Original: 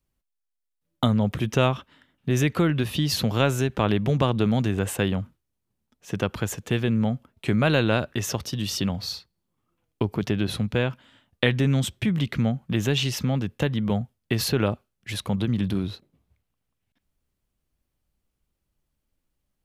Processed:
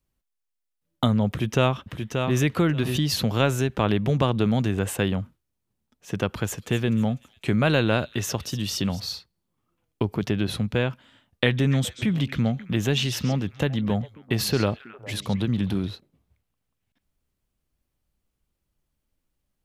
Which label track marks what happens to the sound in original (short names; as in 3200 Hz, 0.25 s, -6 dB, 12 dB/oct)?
1.280000	2.390000	echo throw 0.58 s, feedback 15%, level -5.5 dB
6.170000	9.000000	thin delay 0.249 s, feedback 37%, high-pass 3300 Hz, level -13.5 dB
11.440000	15.890000	delay with a stepping band-pass 0.135 s, band-pass from 4700 Hz, each repeat -1.4 oct, level -9 dB